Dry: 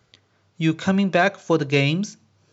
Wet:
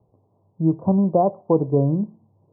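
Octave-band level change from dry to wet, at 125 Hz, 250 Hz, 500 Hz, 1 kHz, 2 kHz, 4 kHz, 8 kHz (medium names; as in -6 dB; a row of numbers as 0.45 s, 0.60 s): +1.5 dB, +1.5 dB, +1.5 dB, +0.5 dB, under -40 dB, under -40 dB, no reading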